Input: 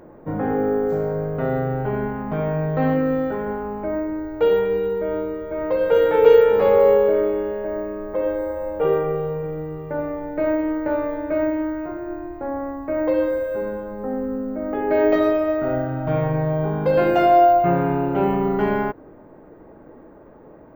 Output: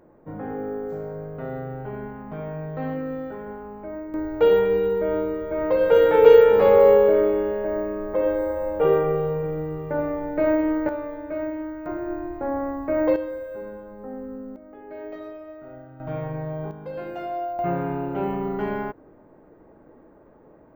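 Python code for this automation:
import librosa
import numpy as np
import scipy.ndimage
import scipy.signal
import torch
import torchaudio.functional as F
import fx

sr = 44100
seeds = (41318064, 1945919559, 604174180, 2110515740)

y = fx.gain(x, sr, db=fx.steps((0.0, -9.5), (4.14, 0.5), (10.89, -7.5), (11.86, 0.5), (13.16, -9.5), (14.56, -19.5), (16.0, -9.0), (16.71, -16.0), (17.59, -6.5)))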